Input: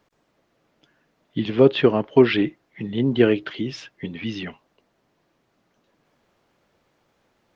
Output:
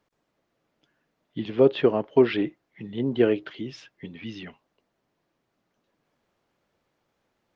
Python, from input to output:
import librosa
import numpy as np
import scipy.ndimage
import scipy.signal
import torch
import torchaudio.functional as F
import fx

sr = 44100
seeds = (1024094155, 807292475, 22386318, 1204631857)

y = fx.dynamic_eq(x, sr, hz=560.0, q=0.7, threshold_db=-28.0, ratio=4.0, max_db=6)
y = F.gain(torch.from_numpy(y), -8.0).numpy()